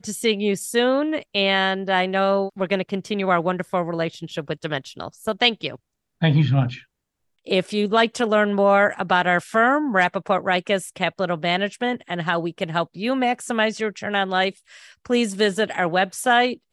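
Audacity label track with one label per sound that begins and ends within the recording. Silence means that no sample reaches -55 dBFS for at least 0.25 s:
6.210000	6.850000	sound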